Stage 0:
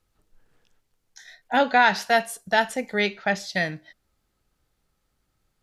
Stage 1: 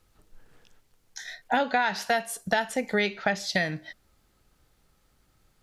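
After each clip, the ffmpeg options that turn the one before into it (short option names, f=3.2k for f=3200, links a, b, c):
-af "acompressor=threshold=-30dB:ratio=5,volume=7dB"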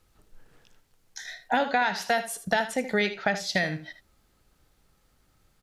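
-af "aecho=1:1:77:0.251"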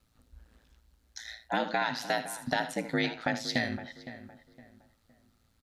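-filter_complex "[0:a]aeval=exprs='val(0)*sin(2*PI*56*n/s)':c=same,equalizer=f=250:t=o:w=0.33:g=8,equalizer=f=400:t=o:w=0.33:g=-4,equalizer=f=4k:t=o:w=0.33:g=5,asplit=2[a][b];[b]adelay=513,lowpass=f=1.8k:p=1,volume=-13dB,asplit=2[c][d];[d]adelay=513,lowpass=f=1.8k:p=1,volume=0.33,asplit=2[e][f];[f]adelay=513,lowpass=f=1.8k:p=1,volume=0.33[g];[a][c][e][g]amix=inputs=4:normalize=0,volume=-2.5dB"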